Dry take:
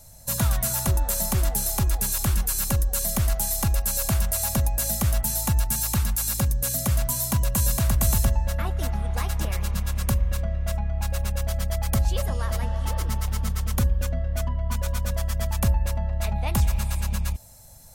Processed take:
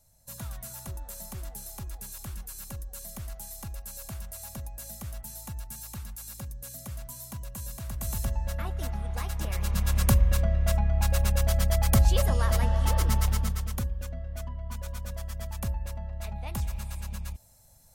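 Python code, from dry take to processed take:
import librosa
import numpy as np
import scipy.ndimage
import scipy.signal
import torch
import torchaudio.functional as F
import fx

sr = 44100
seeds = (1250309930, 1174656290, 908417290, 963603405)

y = fx.gain(x, sr, db=fx.line((7.8, -16.0), (8.44, -6.0), (9.38, -6.0), (9.95, 2.0), (13.26, 2.0), (13.89, -10.0)))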